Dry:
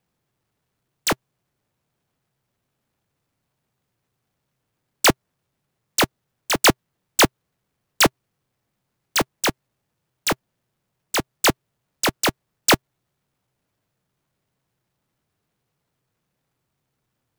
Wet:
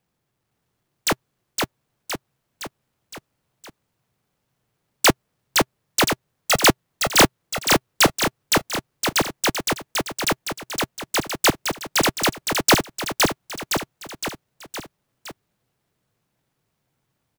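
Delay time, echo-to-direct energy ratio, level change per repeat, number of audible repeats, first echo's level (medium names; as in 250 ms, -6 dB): 514 ms, -1.5 dB, -5.0 dB, 5, -3.0 dB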